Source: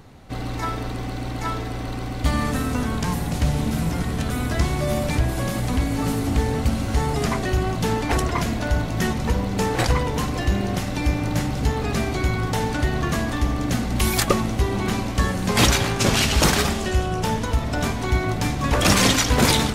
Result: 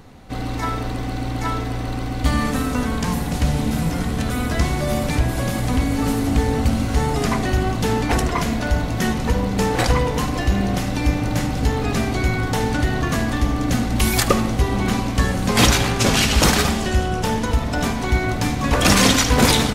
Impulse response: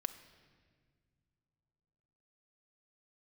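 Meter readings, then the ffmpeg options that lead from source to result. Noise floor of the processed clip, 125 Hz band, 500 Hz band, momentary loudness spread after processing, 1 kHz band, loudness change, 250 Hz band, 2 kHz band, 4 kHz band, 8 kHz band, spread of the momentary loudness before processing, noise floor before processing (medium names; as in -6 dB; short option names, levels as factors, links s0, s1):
-25 dBFS, +2.0 dB, +2.0 dB, 8 LU, +2.5 dB, +2.5 dB, +3.0 dB, +2.5 dB, +2.5 dB, +2.0 dB, 8 LU, -28 dBFS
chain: -filter_complex "[0:a]aecho=1:1:75:0.15,asplit=2[s0][s1];[1:a]atrim=start_sample=2205[s2];[s1][s2]afir=irnorm=-1:irlink=0,volume=2.37[s3];[s0][s3]amix=inputs=2:normalize=0,volume=0.422"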